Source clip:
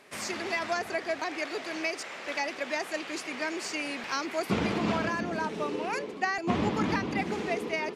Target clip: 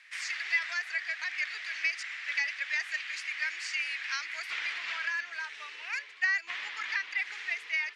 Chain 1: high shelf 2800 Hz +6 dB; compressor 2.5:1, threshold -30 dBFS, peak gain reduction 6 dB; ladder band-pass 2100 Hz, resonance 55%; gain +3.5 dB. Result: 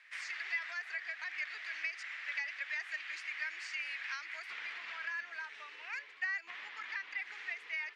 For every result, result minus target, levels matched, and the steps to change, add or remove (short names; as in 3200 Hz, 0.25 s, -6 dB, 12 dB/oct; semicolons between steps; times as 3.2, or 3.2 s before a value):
compressor: peak gain reduction +6 dB; 4000 Hz band -2.0 dB
remove: compressor 2.5:1, threshold -30 dBFS, peak gain reduction 6 dB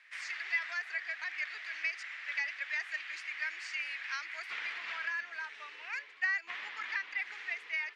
4000 Hz band -2.5 dB
change: high shelf 2800 Hz +17.5 dB